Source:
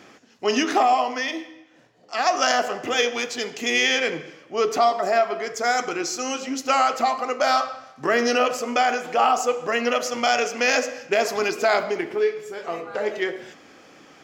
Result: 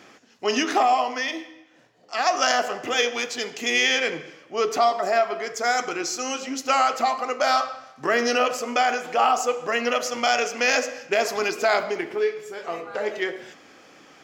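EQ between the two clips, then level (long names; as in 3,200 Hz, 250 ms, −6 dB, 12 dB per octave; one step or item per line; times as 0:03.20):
low-shelf EQ 470 Hz −3.5 dB
0.0 dB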